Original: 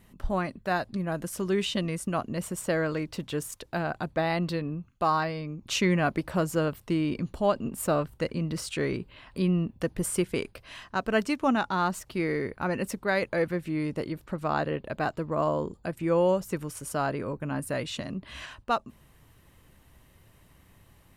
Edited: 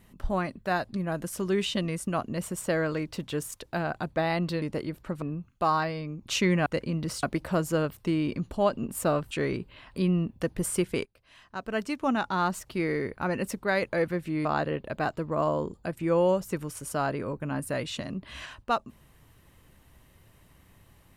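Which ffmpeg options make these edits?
-filter_complex "[0:a]asplit=8[a][b][c][d][e][f][g][h];[a]atrim=end=4.622[i];[b]atrim=start=13.848:end=14.452[j];[c]atrim=start=4.618:end=6.062[k];[d]atrim=start=8.138:end=8.712[l];[e]atrim=start=6.058:end=8.142[m];[f]atrim=start=8.708:end=10.45,asetpts=PTS-STARTPTS,afade=t=out:st=1.738:d=0.004:c=hsin:silence=0.0707946[n];[g]atrim=start=10.45:end=13.852,asetpts=PTS-STARTPTS,afade=t=in:d=1.35:silence=0.0707946[o];[h]atrim=start=14.448[p];[i][j]acrossfade=d=0.004:c1=hsin:c2=hsin[q];[q][k]acrossfade=d=0.004:c1=hsin:c2=hsin[r];[r][l]acrossfade=d=0.004:c1=hsin:c2=hsin[s];[s][m]acrossfade=d=0.004:c1=hsin:c2=hsin[t];[n][o]concat=n=2:v=0:a=1[u];[t][u]acrossfade=d=0.004:c1=hsin:c2=hsin[v];[v][p]acrossfade=d=0.004:c1=hsin:c2=hsin"

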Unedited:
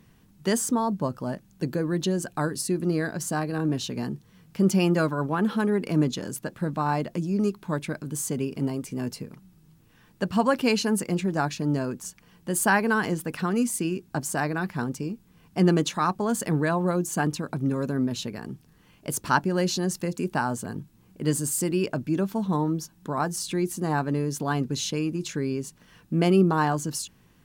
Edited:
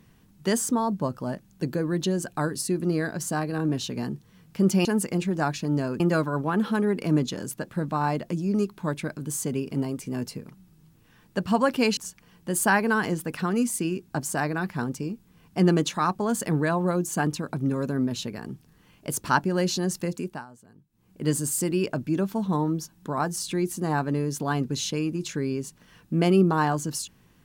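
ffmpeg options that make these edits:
-filter_complex "[0:a]asplit=6[a][b][c][d][e][f];[a]atrim=end=4.852[g];[b]atrim=start=10.818:end=11.972[h];[c]atrim=start=4.848:end=10.822[i];[d]atrim=start=11.968:end=20.46,asetpts=PTS-STARTPTS,afade=t=out:st=8.132:d=0.36:silence=0.0944061[j];[e]atrim=start=20.46:end=20.89,asetpts=PTS-STARTPTS,volume=-20.5dB[k];[f]atrim=start=20.89,asetpts=PTS-STARTPTS,afade=t=in:d=0.36:silence=0.0944061[l];[g][h]acrossfade=d=0.004:c1=hsin:c2=hsin[m];[m][i]acrossfade=d=0.004:c1=hsin:c2=hsin[n];[j][k][l]concat=n=3:v=0:a=1[o];[n][o]acrossfade=d=0.004:c1=hsin:c2=hsin"

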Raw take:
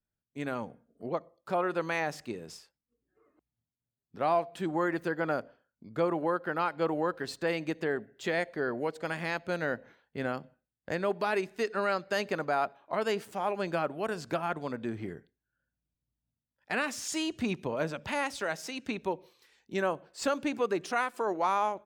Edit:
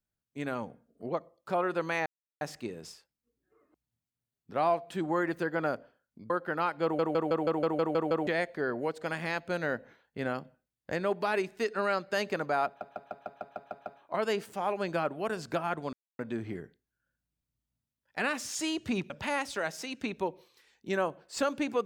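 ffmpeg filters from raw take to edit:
-filter_complex "[0:a]asplit=22[a][b][c][d][e][f][g][h][i][j][k][l][m][n][o][p][q][r][s][t][u][v];[a]atrim=end=2.06,asetpts=PTS-STARTPTS,afade=t=out:st=2.056:d=0.004:c=hsin,apad=pad_dur=0.35[w];[b]atrim=start=2.06:end=5.952,asetpts=PTS-STARTPTS,afade=t=in:d=0.004:c=hsin[x];[c]atrim=start=6.288:end=6.982[y];[d]atrim=start=6.818:end=6.982[z];[e]atrim=start=6.818:end=6.982[aa];[f]atrim=start=6.818:end=6.982[ab];[g]atrim=start=6.818:end=6.982[ac];[h]atrim=start=6.818:end=6.982[ad];[i]atrim=start=6.818:end=6.982[ae];[j]atrim=start=6.818:end=6.982[af];[k]atrim=start=6.818:end=6.982[ag];[l]atrim=start=8.258:end=12.802[ah];[m]atrim=start=12.648:end=12.802[ai];[n]atrim=start=12.648:end=12.802[aj];[o]atrim=start=12.648:end=12.802[ak];[p]atrim=start=12.648:end=12.802[al];[q]atrim=start=12.648:end=12.802[am];[r]atrim=start=12.648:end=12.802[an];[s]atrim=start=12.648:end=12.802[ao];[t]atrim=start=12.648:end=14.72,asetpts=PTS-STARTPTS,afade=t=out:st=2.068:d=0.004:c=hsin,apad=pad_dur=0.26[ap];[u]atrim=start=14.72:end=17.632,asetpts=PTS-STARTPTS,afade=t=in:d=0.004:c=hsin[aq];[v]atrim=start=17.948[ar];[w][x]concat=n=2:v=0:a=1[as];[as][y]acrossfade=d=0.004:c1=hsin:c2=hsin[at];[at][z]acrossfade=d=0.004:c1=hsin:c2=hsin[au];[au][aa]acrossfade=d=0.004:c1=hsin:c2=hsin[av];[av][ab]acrossfade=d=0.004:c1=hsin:c2=hsin[aw];[aw][ac]acrossfade=d=0.004:c1=hsin:c2=hsin[ax];[ax][ad]acrossfade=d=0.004:c1=hsin:c2=hsin[ay];[ay][ae]acrossfade=d=0.004:c1=hsin:c2=hsin[az];[az][af]acrossfade=d=0.004:c1=hsin:c2=hsin[ba];[ba][ag]acrossfade=d=0.004:c1=hsin:c2=hsin[bb];[bb][ah]acrossfade=d=0.004:c1=hsin:c2=hsin[bc];[bc][ai]acrossfade=d=0.004:c1=hsin:c2=hsin[bd];[bd][aj]acrossfade=d=0.004:c1=hsin:c2=hsin[be];[be][ak]acrossfade=d=0.004:c1=hsin:c2=hsin[bf];[bf][al]acrossfade=d=0.004:c1=hsin:c2=hsin[bg];[bg][am]acrossfade=d=0.004:c1=hsin:c2=hsin[bh];[bh][an]acrossfade=d=0.004:c1=hsin:c2=hsin[bi];[bi][ao]acrossfade=d=0.004:c1=hsin:c2=hsin[bj];[ap][aq]concat=n=2:v=0:a=1[bk];[bj][bk]acrossfade=d=0.004:c1=hsin:c2=hsin[bl];[bl][ar]acrossfade=d=0.004:c1=hsin:c2=hsin"

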